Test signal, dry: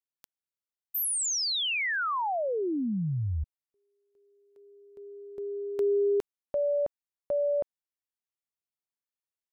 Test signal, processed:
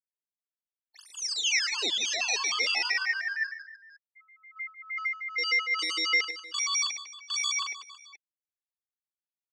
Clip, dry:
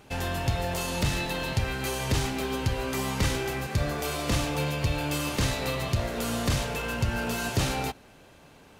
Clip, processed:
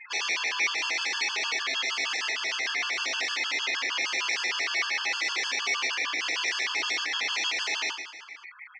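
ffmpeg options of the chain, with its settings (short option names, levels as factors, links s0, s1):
-filter_complex "[0:a]afftfilt=real='re*gte(hypot(re,im),0.00708)':imag='im*gte(hypot(re,im),0.00708)':win_size=1024:overlap=0.75,adynamicequalizer=threshold=0.00708:dfrequency=920:dqfactor=0.76:tfrequency=920:tqfactor=0.76:attack=5:release=100:ratio=0.375:range=1.5:mode=cutabove:tftype=bell,acrossover=split=4200[s0][s1];[s0]alimiter=limit=0.0668:level=0:latency=1:release=473[s2];[s2][s1]amix=inputs=2:normalize=0,flanger=delay=2.5:depth=2.4:regen=13:speed=1.1:shape=triangular,asplit=2[s3][s4];[s4]highpass=f=720:p=1,volume=5.01,asoftclip=type=tanh:threshold=0.0841[s5];[s3][s5]amix=inputs=2:normalize=0,lowpass=f=1400:p=1,volume=0.501,aeval=exprs='val(0)*sin(2*PI*1700*n/s)':c=same,aeval=exprs='0.0668*sin(PI/2*4.47*val(0)/0.0668)':c=same,highpass=f=350:w=0.5412,highpass=f=350:w=1.3066,equalizer=f=580:t=q:w=4:g=-9,equalizer=f=920:t=q:w=4:g=-5,equalizer=f=1400:t=q:w=4:g=-6,equalizer=f=2100:t=q:w=4:g=7,equalizer=f=3000:t=q:w=4:g=5,equalizer=f=5800:t=q:w=4:g=6,lowpass=f=5900:w=0.5412,lowpass=f=5900:w=1.3066,aecho=1:1:40|100|190|325|527.5:0.631|0.398|0.251|0.158|0.1,afftfilt=real='re*gt(sin(2*PI*6.5*pts/sr)*(1-2*mod(floor(b*sr/1024/870),2)),0)':imag='im*gt(sin(2*PI*6.5*pts/sr)*(1-2*mod(floor(b*sr/1024/870),2)),0)':win_size=1024:overlap=0.75,volume=0.794"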